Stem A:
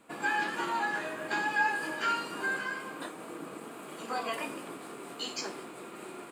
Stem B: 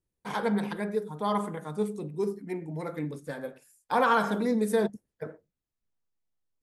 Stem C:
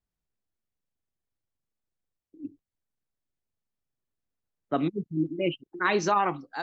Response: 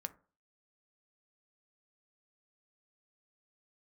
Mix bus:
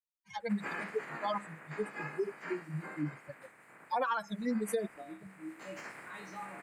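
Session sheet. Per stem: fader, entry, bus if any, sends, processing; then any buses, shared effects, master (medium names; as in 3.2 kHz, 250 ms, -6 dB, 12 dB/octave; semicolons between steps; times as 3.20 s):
-7.0 dB, 0.40 s, no send, spectral peaks clipped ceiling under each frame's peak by 21 dB; resonant high shelf 2.6 kHz -8.5 dB, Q 3; auto duck -9 dB, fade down 1.65 s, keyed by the second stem
+2.0 dB, 0.00 s, no send, expander on every frequency bin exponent 3
-10.5 dB, 0.25 s, no send, feedback comb 64 Hz, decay 0.37 s, harmonics odd, mix 100%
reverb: none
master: compression 6:1, threshold -29 dBFS, peak gain reduction 9 dB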